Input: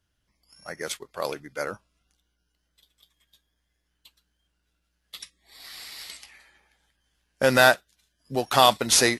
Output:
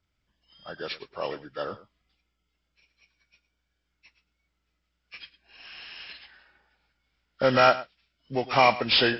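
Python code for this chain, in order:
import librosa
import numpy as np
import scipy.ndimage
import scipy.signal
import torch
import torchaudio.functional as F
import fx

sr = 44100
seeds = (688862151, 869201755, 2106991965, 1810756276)

y = fx.freq_compress(x, sr, knee_hz=1100.0, ratio=1.5)
y = y + 10.0 ** (-17.0 / 20.0) * np.pad(y, (int(108 * sr / 1000.0), 0))[:len(y)]
y = F.gain(torch.from_numpy(y), -1.5).numpy()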